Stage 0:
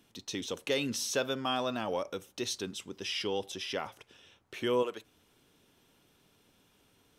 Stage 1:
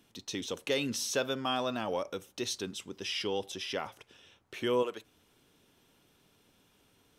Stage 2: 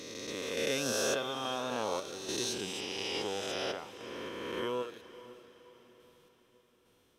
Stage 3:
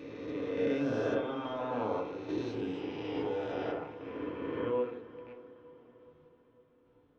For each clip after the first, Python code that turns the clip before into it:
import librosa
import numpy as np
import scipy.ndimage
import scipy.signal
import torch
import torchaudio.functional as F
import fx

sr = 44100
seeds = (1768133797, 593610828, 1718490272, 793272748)

y1 = x
y2 = fx.spec_swells(y1, sr, rise_s=2.84)
y2 = fx.tremolo_random(y2, sr, seeds[0], hz=3.5, depth_pct=55)
y2 = fx.echo_diffused(y2, sr, ms=533, feedback_pct=47, wet_db=-16.0)
y2 = F.gain(torch.from_numpy(y2), -5.0).numpy()
y3 = fx.rattle_buzz(y2, sr, strikes_db=-56.0, level_db=-37.0)
y3 = fx.spacing_loss(y3, sr, db_at_10k=45)
y3 = fx.rev_fdn(y3, sr, rt60_s=0.6, lf_ratio=1.2, hf_ratio=0.3, size_ms=20.0, drr_db=-0.5)